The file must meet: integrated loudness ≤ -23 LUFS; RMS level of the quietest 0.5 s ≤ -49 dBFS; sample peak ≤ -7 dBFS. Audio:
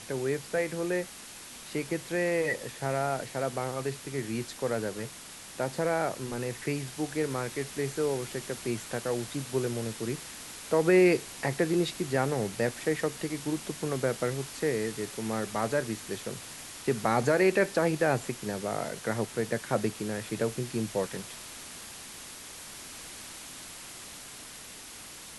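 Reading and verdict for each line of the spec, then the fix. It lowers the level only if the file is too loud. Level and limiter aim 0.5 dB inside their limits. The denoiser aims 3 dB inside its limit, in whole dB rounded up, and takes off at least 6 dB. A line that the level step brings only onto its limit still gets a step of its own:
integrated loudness -31.0 LUFS: OK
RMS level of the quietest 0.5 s -46 dBFS: fail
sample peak -12.5 dBFS: OK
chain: denoiser 6 dB, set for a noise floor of -46 dBFS

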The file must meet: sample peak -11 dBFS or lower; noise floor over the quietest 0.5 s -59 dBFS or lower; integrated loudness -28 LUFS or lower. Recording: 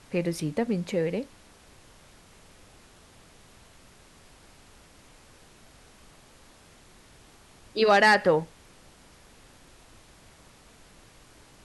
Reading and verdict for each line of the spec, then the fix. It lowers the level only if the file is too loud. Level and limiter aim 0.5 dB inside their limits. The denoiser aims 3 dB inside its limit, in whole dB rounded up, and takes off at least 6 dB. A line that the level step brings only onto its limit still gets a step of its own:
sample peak -8.5 dBFS: fail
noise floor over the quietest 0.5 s -54 dBFS: fail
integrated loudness -24.5 LUFS: fail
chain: denoiser 6 dB, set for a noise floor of -54 dBFS; gain -4 dB

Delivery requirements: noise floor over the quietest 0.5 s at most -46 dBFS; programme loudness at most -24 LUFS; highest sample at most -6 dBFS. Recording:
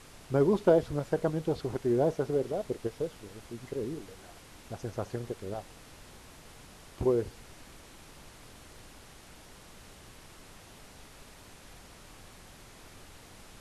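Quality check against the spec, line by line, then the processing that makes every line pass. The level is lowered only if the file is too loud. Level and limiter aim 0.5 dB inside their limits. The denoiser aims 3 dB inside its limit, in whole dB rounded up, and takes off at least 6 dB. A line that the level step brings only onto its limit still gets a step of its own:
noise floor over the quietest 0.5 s -52 dBFS: OK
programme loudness -31.0 LUFS: OK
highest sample -11.0 dBFS: OK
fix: none

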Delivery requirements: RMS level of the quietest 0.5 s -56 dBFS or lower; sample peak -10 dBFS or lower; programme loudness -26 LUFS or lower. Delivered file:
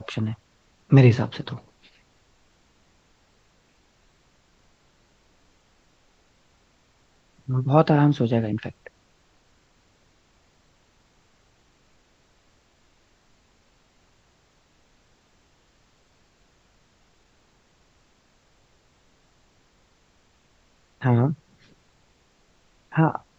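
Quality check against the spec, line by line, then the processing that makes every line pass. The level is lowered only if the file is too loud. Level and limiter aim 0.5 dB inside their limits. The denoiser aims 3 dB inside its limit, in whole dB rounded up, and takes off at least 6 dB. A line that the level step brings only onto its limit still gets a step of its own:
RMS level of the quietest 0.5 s -62 dBFS: OK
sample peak -3.0 dBFS: fail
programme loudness -22.0 LUFS: fail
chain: gain -4.5 dB; limiter -10.5 dBFS

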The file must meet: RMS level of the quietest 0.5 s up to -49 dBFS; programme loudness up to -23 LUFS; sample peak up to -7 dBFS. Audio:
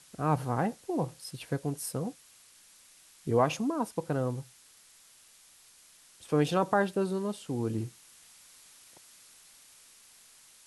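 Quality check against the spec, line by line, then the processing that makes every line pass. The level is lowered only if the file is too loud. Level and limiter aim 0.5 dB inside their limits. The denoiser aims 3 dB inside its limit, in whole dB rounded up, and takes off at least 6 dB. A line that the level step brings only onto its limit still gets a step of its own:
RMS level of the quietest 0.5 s -59 dBFS: OK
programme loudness -31.5 LUFS: OK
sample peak -12.0 dBFS: OK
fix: none

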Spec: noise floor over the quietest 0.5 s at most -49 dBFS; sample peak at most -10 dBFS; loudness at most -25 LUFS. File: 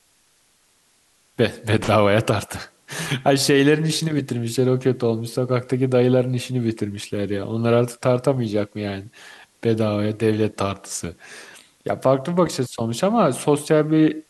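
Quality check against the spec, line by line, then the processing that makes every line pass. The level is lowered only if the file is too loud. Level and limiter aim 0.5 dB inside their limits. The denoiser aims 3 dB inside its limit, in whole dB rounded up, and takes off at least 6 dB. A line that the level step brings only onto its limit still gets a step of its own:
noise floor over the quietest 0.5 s -61 dBFS: OK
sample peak -4.5 dBFS: fail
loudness -21.0 LUFS: fail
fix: gain -4.5 dB; limiter -10.5 dBFS

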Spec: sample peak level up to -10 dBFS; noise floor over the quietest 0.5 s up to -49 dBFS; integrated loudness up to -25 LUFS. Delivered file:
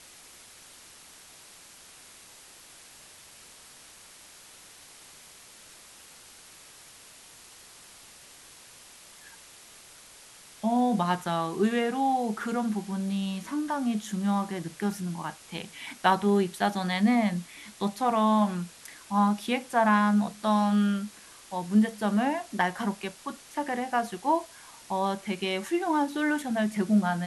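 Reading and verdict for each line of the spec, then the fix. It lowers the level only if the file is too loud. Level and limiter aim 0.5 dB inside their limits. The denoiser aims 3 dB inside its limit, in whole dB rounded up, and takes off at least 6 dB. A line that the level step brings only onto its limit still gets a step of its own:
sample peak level -9.5 dBFS: fail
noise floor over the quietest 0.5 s -51 dBFS: OK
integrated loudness -27.5 LUFS: OK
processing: limiter -10.5 dBFS

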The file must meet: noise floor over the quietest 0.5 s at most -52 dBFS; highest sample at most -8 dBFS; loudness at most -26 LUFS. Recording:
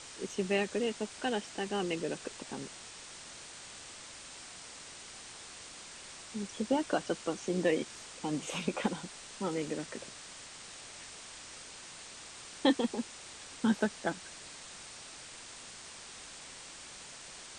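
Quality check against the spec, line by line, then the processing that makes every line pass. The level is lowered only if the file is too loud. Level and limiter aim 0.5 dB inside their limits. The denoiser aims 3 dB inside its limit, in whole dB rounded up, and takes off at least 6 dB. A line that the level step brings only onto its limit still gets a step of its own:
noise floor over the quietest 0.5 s -49 dBFS: fail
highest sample -15.5 dBFS: OK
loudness -37.5 LUFS: OK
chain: denoiser 6 dB, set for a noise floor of -49 dBFS

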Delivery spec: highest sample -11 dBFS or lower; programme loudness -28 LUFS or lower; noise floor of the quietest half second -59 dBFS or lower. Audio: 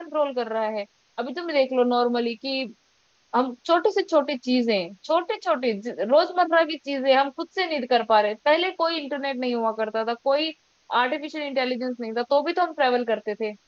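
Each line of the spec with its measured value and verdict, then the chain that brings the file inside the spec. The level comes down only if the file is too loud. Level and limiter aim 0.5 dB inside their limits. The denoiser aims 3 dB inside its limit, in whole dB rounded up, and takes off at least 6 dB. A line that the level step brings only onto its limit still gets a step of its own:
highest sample -7.0 dBFS: fail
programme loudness -24.0 LUFS: fail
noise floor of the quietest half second -64 dBFS: OK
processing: gain -4.5 dB

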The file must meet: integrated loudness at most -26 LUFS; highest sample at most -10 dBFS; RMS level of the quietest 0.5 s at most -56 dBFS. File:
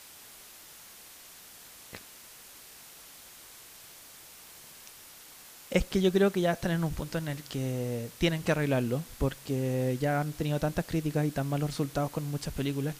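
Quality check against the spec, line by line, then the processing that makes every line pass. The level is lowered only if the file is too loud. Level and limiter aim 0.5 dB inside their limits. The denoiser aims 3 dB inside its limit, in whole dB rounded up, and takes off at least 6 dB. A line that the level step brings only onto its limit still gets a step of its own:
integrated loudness -30.5 LUFS: OK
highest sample -11.5 dBFS: OK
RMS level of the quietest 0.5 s -51 dBFS: fail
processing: denoiser 8 dB, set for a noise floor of -51 dBFS

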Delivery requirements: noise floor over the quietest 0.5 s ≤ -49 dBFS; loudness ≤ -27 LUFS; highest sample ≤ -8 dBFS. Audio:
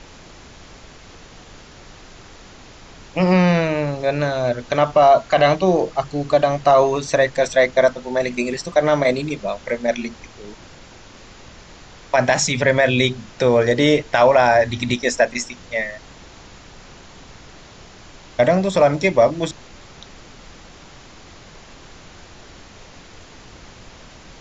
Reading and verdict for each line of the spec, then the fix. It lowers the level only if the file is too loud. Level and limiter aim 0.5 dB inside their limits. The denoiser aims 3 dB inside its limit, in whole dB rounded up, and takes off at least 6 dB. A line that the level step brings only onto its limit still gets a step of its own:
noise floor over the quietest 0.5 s -43 dBFS: fail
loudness -18.0 LUFS: fail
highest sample -4.0 dBFS: fail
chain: gain -9.5 dB

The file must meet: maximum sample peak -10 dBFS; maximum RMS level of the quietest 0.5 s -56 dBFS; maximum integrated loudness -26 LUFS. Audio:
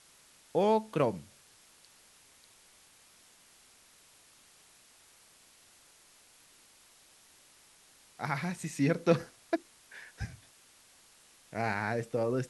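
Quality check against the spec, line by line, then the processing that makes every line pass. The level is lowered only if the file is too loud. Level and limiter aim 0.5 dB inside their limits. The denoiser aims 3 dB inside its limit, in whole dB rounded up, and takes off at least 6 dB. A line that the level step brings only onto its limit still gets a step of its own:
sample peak -12.0 dBFS: OK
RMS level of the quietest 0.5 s -61 dBFS: OK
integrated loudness -32.5 LUFS: OK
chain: none

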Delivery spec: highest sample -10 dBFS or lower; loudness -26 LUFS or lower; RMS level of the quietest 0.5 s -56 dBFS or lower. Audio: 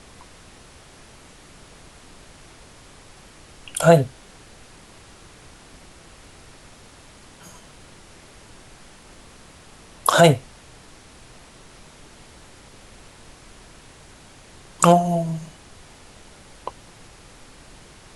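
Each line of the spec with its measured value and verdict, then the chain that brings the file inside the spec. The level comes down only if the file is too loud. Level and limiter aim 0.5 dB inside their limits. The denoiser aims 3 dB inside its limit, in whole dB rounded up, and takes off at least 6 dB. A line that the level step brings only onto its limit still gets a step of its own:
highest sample -1.5 dBFS: fail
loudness -18.5 LUFS: fail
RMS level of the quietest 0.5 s -47 dBFS: fail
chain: denoiser 6 dB, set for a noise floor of -47 dBFS; gain -8 dB; limiter -10.5 dBFS

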